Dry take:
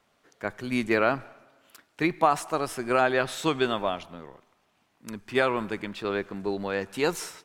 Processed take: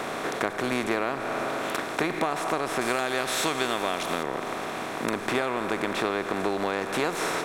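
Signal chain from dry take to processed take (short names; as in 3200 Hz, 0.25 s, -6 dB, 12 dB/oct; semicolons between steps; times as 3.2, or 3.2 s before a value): per-bin compression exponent 0.4; 2.81–4.23 high shelf 2900 Hz +11 dB; compressor 6:1, threshold -26 dBFS, peak gain reduction 14.5 dB; gain +2.5 dB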